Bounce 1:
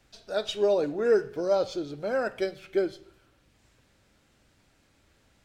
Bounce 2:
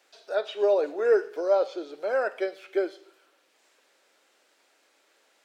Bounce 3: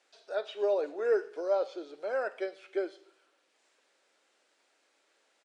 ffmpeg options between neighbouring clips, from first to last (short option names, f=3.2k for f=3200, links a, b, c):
-filter_complex "[0:a]acrossover=split=2900[a][b];[b]acompressor=threshold=-56dB:ratio=4:attack=1:release=60[c];[a][c]amix=inputs=2:normalize=0,highpass=f=390:w=0.5412,highpass=f=390:w=1.3066,volume=2.5dB"
-af "aresample=22050,aresample=44100,volume=-6dB"